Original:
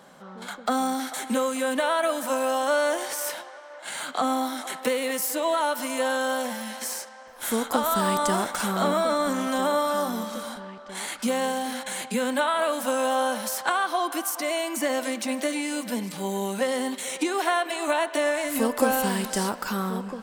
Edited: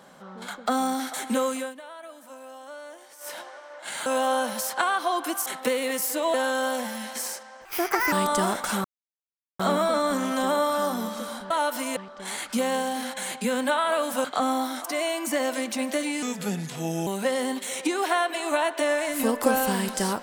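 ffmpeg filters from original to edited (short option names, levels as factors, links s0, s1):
-filter_complex "[0:a]asplit=15[s0][s1][s2][s3][s4][s5][s6][s7][s8][s9][s10][s11][s12][s13][s14];[s0]atrim=end=1.74,asetpts=PTS-STARTPTS,afade=t=out:st=1.51:d=0.23:silence=0.11885[s15];[s1]atrim=start=1.74:end=3.19,asetpts=PTS-STARTPTS,volume=0.119[s16];[s2]atrim=start=3.19:end=4.062,asetpts=PTS-STARTPTS,afade=t=in:d=0.23:silence=0.11885[s17];[s3]atrim=start=12.938:end=14.342[s18];[s4]atrim=start=4.658:end=5.542[s19];[s5]atrim=start=5.998:end=7.314[s20];[s6]atrim=start=7.31:end=8.03,asetpts=PTS-STARTPTS,asetrate=67032,aresample=44100,atrim=end_sample=20889,asetpts=PTS-STARTPTS[s21];[s7]atrim=start=8.026:end=8.75,asetpts=PTS-STARTPTS,afade=t=out:st=0.72:d=0.004:c=hsin,apad=pad_dur=0.75[s22];[s8]atrim=start=8.75:end=10.662,asetpts=PTS-STARTPTS,afade=t=in:d=0.004:c=hsin[s23];[s9]atrim=start=5.538:end=6.002[s24];[s10]atrim=start=10.658:end=12.942[s25];[s11]atrim=start=4.058:end=4.662[s26];[s12]atrim=start=14.338:end=15.724[s27];[s13]atrim=start=15.72:end=16.43,asetpts=PTS-STARTPTS,asetrate=37044,aresample=44100[s28];[s14]atrim=start=16.426[s29];[s15][s16][s17]concat=n=3:v=0:a=1[s30];[s30][s18]acrossfade=d=0.004:c1=hsin:c2=hsin[s31];[s31][s19]acrossfade=d=0.004:c1=hsin:c2=hsin[s32];[s32][s20]acrossfade=d=0.004:c1=hsin:c2=hsin[s33];[s33][s21]acrossfade=d=0.004:c1=hsin:c2=hsin[s34];[s22][s23]concat=n=2:v=0:a=1[s35];[s34][s35]acrossfade=d=0.004:c1=hsin:c2=hsin[s36];[s36][s24]acrossfade=d=0.004:c1=hsin:c2=hsin[s37];[s37][s25]acrossfade=d=0.004:c1=hsin:c2=hsin[s38];[s38][s26]acrossfade=d=0.004:c1=hsin:c2=hsin[s39];[s39][s27]acrossfade=d=0.004:c1=hsin:c2=hsin[s40];[s40][s28]acrossfade=d=0.004:c1=hsin:c2=hsin[s41];[s41][s29]acrossfade=d=0.004:c1=hsin:c2=hsin"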